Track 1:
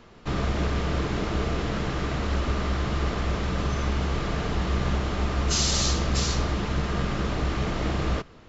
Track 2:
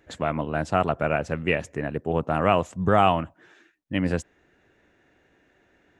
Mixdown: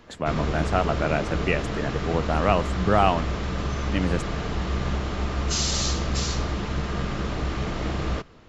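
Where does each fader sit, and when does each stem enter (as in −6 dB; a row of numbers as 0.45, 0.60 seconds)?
−1.0, −1.0 decibels; 0.00, 0.00 seconds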